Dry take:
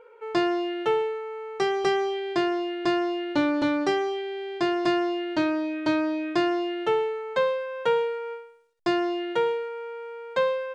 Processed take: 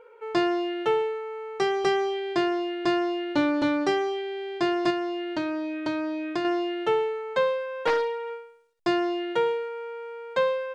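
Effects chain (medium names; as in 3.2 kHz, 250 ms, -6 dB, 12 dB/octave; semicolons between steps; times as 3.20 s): 4.90–6.45 s: compression 2:1, threshold -29 dBFS, peak gain reduction 6 dB; 7.87–8.30 s: loudspeaker Doppler distortion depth 0.44 ms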